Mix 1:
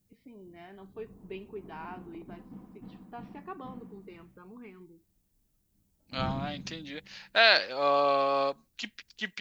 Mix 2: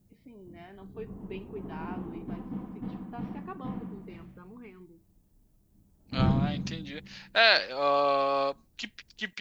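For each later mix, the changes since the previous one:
background +10.0 dB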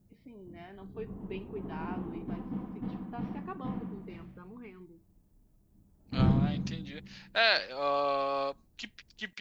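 second voice −4.5 dB

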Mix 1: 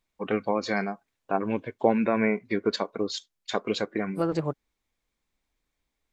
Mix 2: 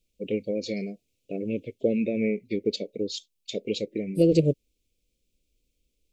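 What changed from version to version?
second voice +8.5 dB
master: add elliptic band-stop filter 530–2,500 Hz, stop band 40 dB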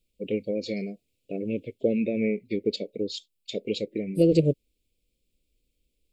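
master: add parametric band 6,100 Hz −8.5 dB 0.27 octaves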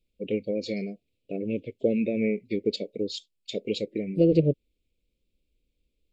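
second voice: add high-frequency loss of the air 220 metres

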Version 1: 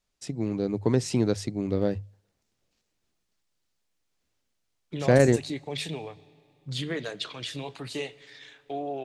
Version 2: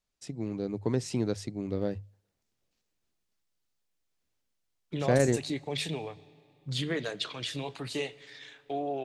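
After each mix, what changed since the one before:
first voice −5.5 dB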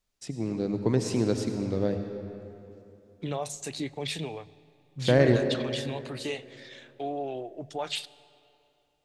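first voice: send on
second voice: entry −1.70 s

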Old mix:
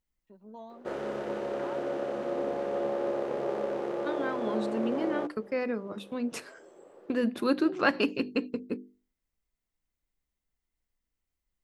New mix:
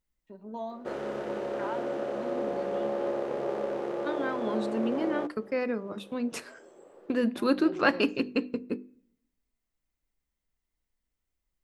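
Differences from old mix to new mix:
first voice +3.5 dB
reverb: on, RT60 0.70 s

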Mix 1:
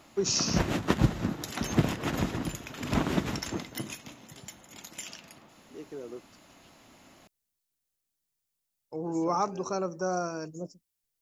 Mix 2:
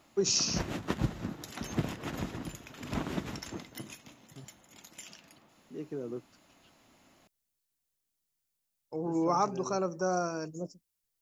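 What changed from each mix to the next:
second voice: add bass and treble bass +13 dB, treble −6 dB
background −7.0 dB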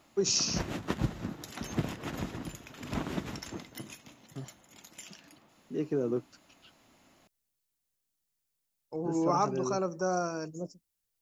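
second voice +8.0 dB

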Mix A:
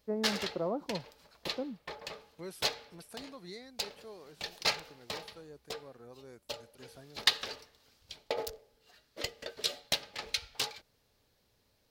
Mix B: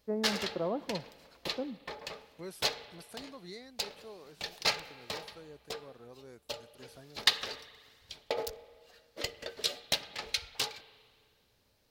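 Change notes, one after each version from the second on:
reverb: on, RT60 1.9 s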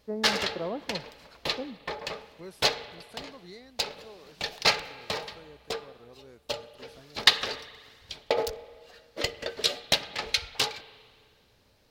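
background +8.0 dB
master: add high-shelf EQ 6,900 Hz −7.5 dB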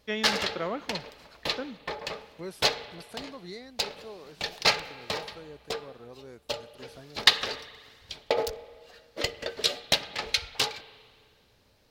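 first voice: remove inverse Chebyshev low-pass filter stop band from 5,300 Hz, stop band 80 dB
second voice +5.0 dB

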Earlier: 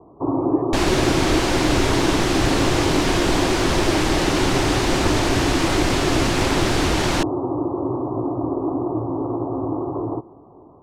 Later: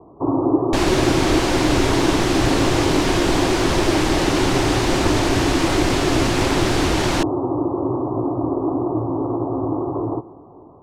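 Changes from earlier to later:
speech −11.0 dB
first sound: send +7.0 dB

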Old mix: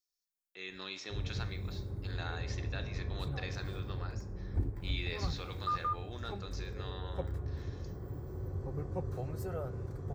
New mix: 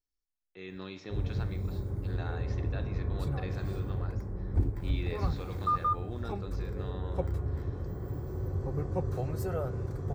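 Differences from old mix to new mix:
speech: add spectral tilt −4 dB per octave
background +5.5 dB

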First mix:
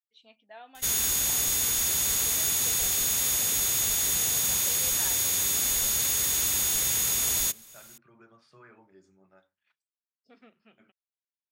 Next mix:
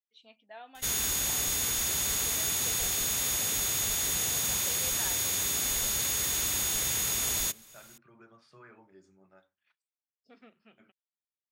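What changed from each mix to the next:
background: add high-shelf EQ 5,300 Hz −5.5 dB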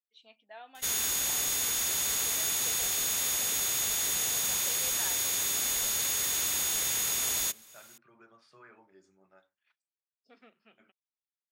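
master: add low-shelf EQ 210 Hz −11 dB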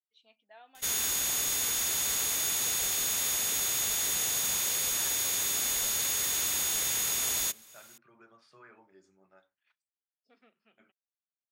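first voice −6.0 dB

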